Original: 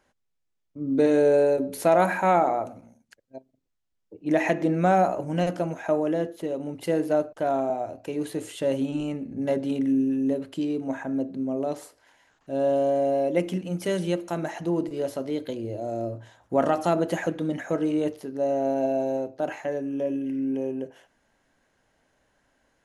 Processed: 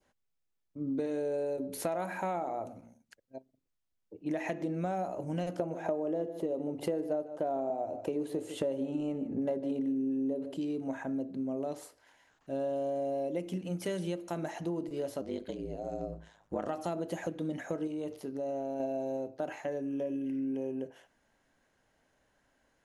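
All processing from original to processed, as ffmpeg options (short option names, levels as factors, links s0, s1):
-filter_complex "[0:a]asettb=1/sr,asplit=3[s0][s1][s2];[s0]atrim=end=5.594[s3];[s1]atrim=start=5.59:end=10.57,asetpts=PTS-STARTPTS,afade=t=in:d=0.004:c=qsin,afade=t=out:st=4.976:d=0.004:c=qsin,equalizer=f=520:w=0.39:g=11,aecho=1:1:150:0.158,atrim=end_sample=219618[s4];[s2]atrim=start=10.566[s5];[s3][s4]acrossfade=d=0.004:c1=hsin:c2=qsin[s6];[s6][s5]acrossfade=d=0.004:c1=qsin:c2=hsin,asettb=1/sr,asplit=3[s7][s8][s9];[s7]atrim=end=15.214[s10];[s8]atrim=start=15.21:end=16.68,asetpts=PTS-STARTPTS,afade=t=in:d=0.004:c=qsin,afade=t=out:st=1.466:d=0.004:c=qsin,lowpass=f=9700:w=0.5412,lowpass=f=9700:w=1.3066,aeval=exprs='val(0)*sin(2*PI*52*n/s)':c=same[s11];[s9]atrim=start=16.676[s12];[s10][s11]acrossfade=d=0.004:c1=hsin:c2=qsin[s13];[s13][s12]acrossfade=d=0.004:c1=qsin:c2=hsin,asettb=1/sr,asplit=3[s14][s15][s16];[s14]atrim=end=17.874[s17];[s15]atrim=start=17.87:end=18.8,asetpts=PTS-STARTPTS,afade=t=in:d=0.004:c=qsin,afade=t=out:st=0.926:d=0.004:c=qsin,equalizer=f=1700:t=o:w=0.25:g=-5.5,acompressor=threshold=0.0398:ratio=4:attack=3.2:release=140:knee=1:detection=peak[s18];[s16]atrim=start=18.796[s19];[s17][s18]acrossfade=d=0.004:c1=hsin:c2=qsin[s20];[s20][s19]acrossfade=d=0.004:c1=qsin:c2=hsin,adynamicequalizer=threshold=0.00891:dfrequency=1600:dqfactor=1:tfrequency=1600:tqfactor=1:attack=5:release=100:ratio=0.375:range=3.5:mode=cutabove:tftype=bell,acompressor=threshold=0.0447:ratio=6,volume=0.631"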